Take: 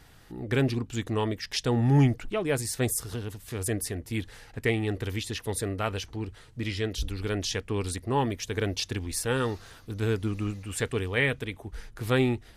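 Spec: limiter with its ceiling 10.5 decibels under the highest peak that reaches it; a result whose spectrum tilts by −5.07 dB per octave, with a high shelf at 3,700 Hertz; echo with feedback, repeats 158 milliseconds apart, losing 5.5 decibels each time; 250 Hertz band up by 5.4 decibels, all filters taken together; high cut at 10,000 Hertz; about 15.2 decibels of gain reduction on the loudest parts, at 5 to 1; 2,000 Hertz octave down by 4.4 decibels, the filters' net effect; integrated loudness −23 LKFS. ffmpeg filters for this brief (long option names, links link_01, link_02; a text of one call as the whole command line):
ffmpeg -i in.wav -af "lowpass=10000,equalizer=frequency=250:width_type=o:gain=6.5,equalizer=frequency=2000:width_type=o:gain=-6.5,highshelf=frequency=3700:gain=4,acompressor=threshold=-31dB:ratio=5,alimiter=level_in=7dB:limit=-24dB:level=0:latency=1,volume=-7dB,aecho=1:1:158|316|474|632|790|948|1106:0.531|0.281|0.149|0.079|0.0419|0.0222|0.0118,volume=15.5dB" out.wav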